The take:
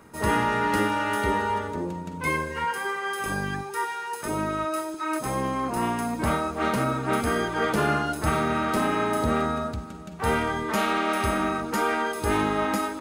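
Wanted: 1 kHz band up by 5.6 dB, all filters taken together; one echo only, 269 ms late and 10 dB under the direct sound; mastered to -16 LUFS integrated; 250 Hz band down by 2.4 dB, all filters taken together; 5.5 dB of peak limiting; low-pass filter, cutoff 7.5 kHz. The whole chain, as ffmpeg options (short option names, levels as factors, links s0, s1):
-af "lowpass=7500,equalizer=f=250:t=o:g=-3.5,equalizer=f=1000:t=o:g=7,alimiter=limit=0.211:level=0:latency=1,aecho=1:1:269:0.316,volume=2.37"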